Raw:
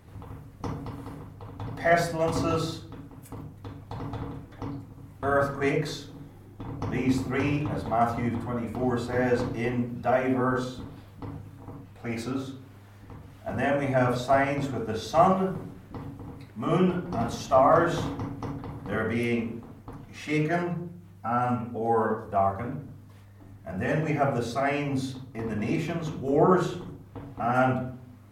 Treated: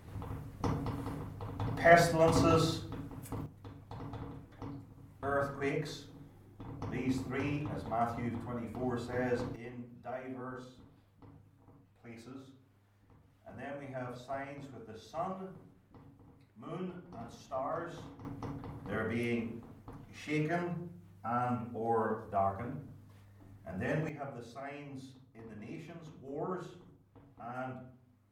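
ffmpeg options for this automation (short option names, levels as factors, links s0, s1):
-af "asetnsamples=n=441:p=0,asendcmd='3.46 volume volume -9dB;9.56 volume volume -18dB;18.25 volume volume -7.5dB;24.09 volume volume -18dB',volume=0.944"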